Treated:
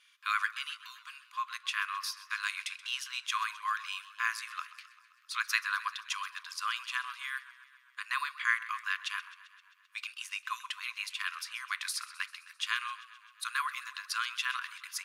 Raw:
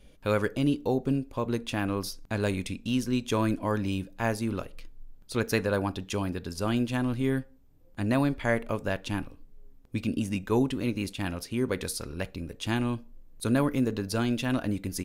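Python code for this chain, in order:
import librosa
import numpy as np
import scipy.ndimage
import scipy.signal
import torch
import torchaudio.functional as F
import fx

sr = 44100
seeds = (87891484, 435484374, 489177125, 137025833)

y = fx.brickwall_highpass(x, sr, low_hz=1000.0)
y = fx.high_shelf(y, sr, hz=8100.0, db=-11.5)
y = fx.echo_warbled(y, sr, ms=131, feedback_pct=66, rate_hz=2.8, cents=74, wet_db=-17.0)
y = y * librosa.db_to_amplitude(4.0)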